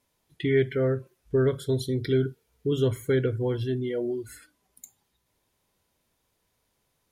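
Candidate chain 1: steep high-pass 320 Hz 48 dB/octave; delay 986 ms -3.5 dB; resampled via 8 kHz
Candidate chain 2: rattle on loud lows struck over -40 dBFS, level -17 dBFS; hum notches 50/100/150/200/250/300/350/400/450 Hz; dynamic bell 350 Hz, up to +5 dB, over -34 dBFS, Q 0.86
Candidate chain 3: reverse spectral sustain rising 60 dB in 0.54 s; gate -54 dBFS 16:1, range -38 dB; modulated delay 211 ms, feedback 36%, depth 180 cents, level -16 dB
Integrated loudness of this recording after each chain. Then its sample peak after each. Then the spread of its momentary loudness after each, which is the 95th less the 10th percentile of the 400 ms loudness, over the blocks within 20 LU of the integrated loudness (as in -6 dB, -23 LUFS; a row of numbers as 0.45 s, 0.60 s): -28.5 LUFS, -23.5 LUFS, -26.0 LUFS; -14.5 dBFS, -9.0 dBFS, -12.0 dBFS; 10 LU, 8 LU, 16 LU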